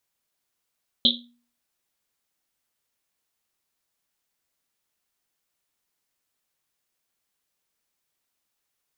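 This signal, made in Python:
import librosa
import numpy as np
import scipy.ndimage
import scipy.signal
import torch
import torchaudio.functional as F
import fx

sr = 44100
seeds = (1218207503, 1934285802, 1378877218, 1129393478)

y = fx.risset_drum(sr, seeds[0], length_s=1.1, hz=240.0, decay_s=0.47, noise_hz=3600.0, noise_width_hz=750.0, noise_pct=75)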